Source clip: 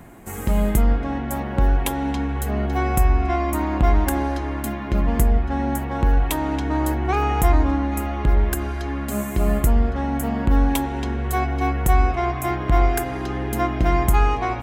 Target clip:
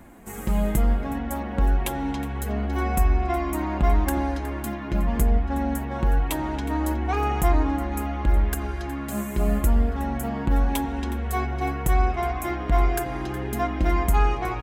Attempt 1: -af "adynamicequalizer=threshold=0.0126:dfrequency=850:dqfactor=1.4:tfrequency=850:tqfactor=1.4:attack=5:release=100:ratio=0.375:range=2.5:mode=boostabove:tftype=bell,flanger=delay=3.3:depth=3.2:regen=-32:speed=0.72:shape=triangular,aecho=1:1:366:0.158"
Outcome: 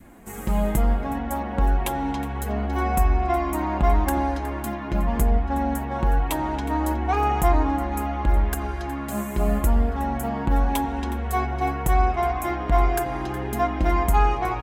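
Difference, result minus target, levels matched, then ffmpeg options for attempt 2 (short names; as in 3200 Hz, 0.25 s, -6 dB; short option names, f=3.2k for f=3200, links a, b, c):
1000 Hz band +3.0 dB
-af "flanger=delay=3.3:depth=3.2:regen=-32:speed=0.72:shape=triangular,aecho=1:1:366:0.158"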